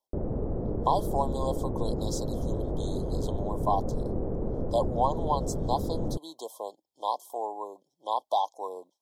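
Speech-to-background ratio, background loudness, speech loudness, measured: 0.5 dB, -33.0 LUFS, -32.5 LUFS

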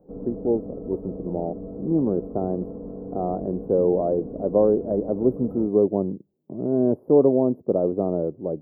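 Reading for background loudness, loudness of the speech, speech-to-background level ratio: -36.5 LUFS, -23.5 LUFS, 13.0 dB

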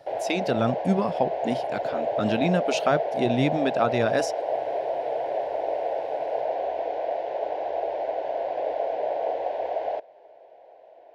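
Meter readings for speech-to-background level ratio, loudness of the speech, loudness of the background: 2.0 dB, -26.5 LUFS, -28.5 LUFS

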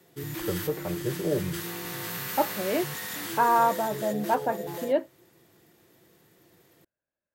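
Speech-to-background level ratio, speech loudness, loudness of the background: 6.0 dB, -28.5 LUFS, -34.5 LUFS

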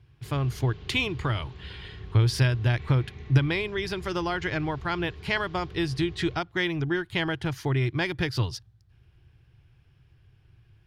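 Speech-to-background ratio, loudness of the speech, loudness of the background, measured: 16.5 dB, -27.5 LUFS, -44.0 LUFS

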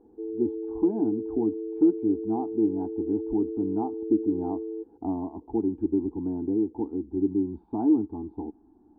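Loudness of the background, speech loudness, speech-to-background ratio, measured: -34.5 LUFS, -28.5 LUFS, 6.0 dB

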